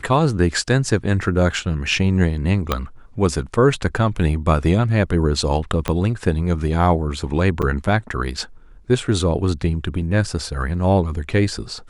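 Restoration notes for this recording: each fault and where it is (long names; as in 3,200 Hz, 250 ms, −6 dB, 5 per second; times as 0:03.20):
0:02.72: click −5 dBFS
0:05.88: click −7 dBFS
0:07.62–0:07.63: drop-out 6.5 ms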